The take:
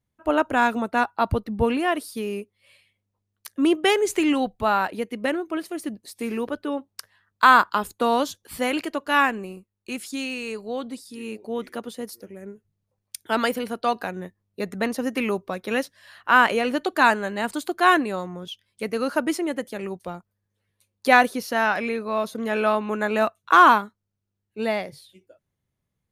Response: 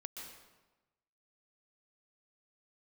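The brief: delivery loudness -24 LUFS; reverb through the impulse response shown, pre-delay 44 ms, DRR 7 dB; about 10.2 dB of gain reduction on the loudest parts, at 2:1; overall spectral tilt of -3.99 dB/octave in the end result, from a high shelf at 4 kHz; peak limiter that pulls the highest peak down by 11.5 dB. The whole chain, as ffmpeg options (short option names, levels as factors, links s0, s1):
-filter_complex "[0:a]highshelf=f=4000:g=3.5,acompressor=threshold=0.0398:ratio=2,alimiter=limit=0.075:level=0:latency=1,asplit=2[s0][s1];[1:a]atrim=start_sample=2205,adelay=44[s2];[s1][s2]afir=irnorm=-1:irlink=0,volume=0.631[s3];[s0][s3]amix=inputs=2:normalize=0,volume=2.82"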